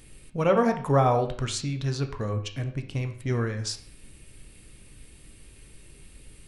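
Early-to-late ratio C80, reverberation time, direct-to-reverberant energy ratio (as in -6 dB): 13.5 dB, 0.50 s, 5.5 dB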